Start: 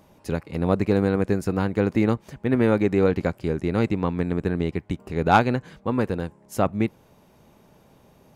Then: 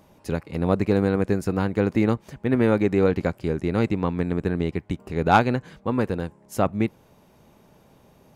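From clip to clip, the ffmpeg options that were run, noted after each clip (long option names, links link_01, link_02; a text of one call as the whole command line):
ffmpeg -i in.wav -af anull out.wav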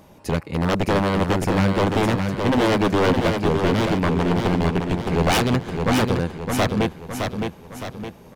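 ffmpeg -i in.wav -af "aeval=exprs='0.106*(abs(mod(val(0)/0.106+3,4)-2)-1)':channel_layout=same,aecho=1:1:614|1228|1842|2456|3070|3684:0.562|0.264|0.124|0.0584|0.0274|0.0129,volume=6dB" out.wav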